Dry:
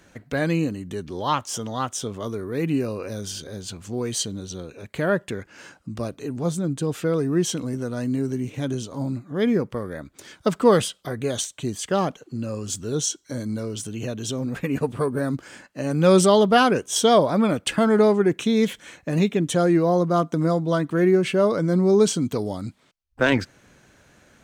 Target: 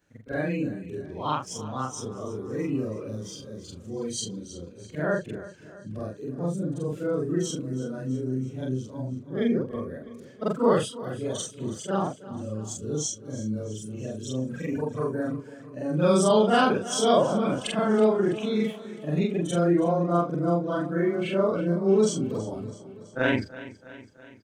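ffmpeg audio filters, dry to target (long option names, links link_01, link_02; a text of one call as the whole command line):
ffmpeg -i in.wav -af "afftfilt=real='re':imag='-im':win_size=4096:overlap=0.75,afftdn=noise_reduction=12:noise_floor=-37,aecho=1:1:328|656|984|1312|1640|1968:0.15|0.0883|0.0521|0.0307|0.0181|0.0107" out.wav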